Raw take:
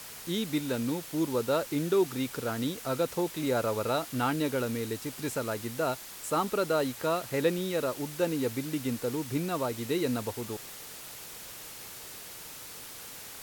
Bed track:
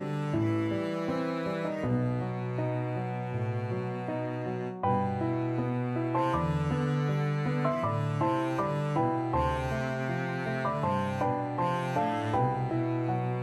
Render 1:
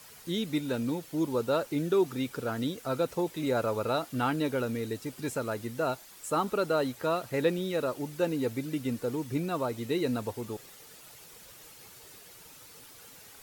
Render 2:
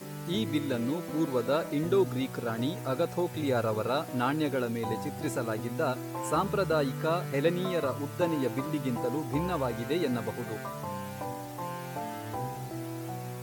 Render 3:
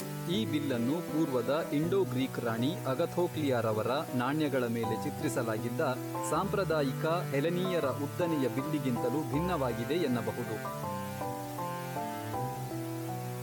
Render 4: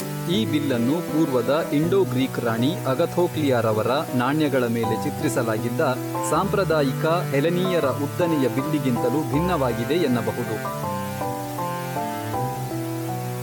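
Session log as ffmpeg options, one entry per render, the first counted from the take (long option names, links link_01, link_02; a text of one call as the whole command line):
ffmpeg -i in.wav -af "afftdn=noise_reduction=9:noise_floor=-45" out.wav
ffmpeg -i in.wav -i bed.wav -filter_complex "[1:a]volume=-8dB[link_01];[0:a][link_01]amix=inputs=2:normalize=0" out.wav
ffmpeg -i in.wav -af "alimiter=limit=-21dB:level=0:latency=1:release=71,acompressor=mode=upward:threshold=-34dB:ratio=2.5" out.wav
ffmpeg -i in.wav -af "volume=9.5dB" out.wav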